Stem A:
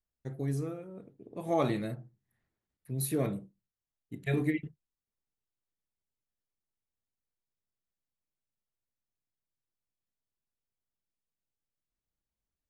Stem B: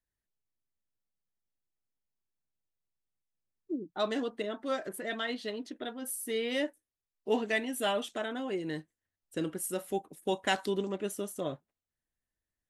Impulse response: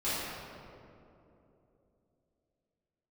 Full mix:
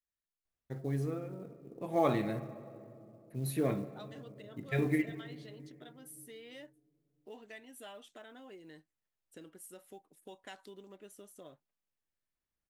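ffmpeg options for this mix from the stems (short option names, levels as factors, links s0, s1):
-filter_complex "[0:a]bass=f=250:g=1,treble=f=4000:g=-9,adelay=450,volume=1.06,asplit=2[s0][s1];[s1]volume=0.0891[s2];[1:a]acompressor=threshold=0.00708:ratio=2.5,volume=0.398[s3];[2:a]atrim=start_sample=2205[s4];[s2][s4]afir=irnorm=-1:irlink=0[s5];[s0][s3][s5]amix=inputs=3:normalize=0,lowshelf=f=300:g=-5,acrusher=bits=8:mode=log:mix=0:aa=0.000001"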